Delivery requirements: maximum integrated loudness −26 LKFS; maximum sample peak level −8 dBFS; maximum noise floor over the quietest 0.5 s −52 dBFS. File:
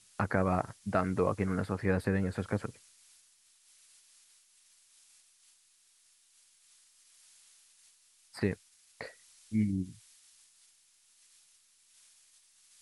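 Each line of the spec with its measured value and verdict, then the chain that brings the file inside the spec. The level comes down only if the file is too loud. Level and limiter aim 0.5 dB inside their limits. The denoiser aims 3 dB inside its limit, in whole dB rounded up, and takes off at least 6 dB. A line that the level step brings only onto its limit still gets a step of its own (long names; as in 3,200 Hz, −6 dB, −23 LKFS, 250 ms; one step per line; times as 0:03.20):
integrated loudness −33.5 LKFS: in spec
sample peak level −12.5 dBFS: in spec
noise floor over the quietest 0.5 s −67 dBFS: in spec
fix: no processing needed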